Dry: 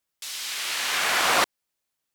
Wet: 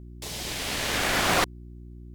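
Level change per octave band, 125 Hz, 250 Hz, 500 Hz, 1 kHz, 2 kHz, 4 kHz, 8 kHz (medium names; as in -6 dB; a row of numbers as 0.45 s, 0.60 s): +15.5 dB, +8.0 dB, +1.5 dB, -2.5 dB, -2.5 dB, -2.5 dB, -2.5 dB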